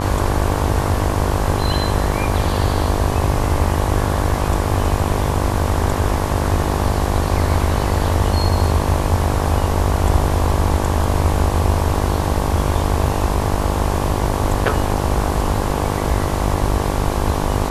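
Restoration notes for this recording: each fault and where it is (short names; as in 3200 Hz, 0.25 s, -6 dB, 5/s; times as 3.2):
buzz 50 Hz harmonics 23 -22 dBFS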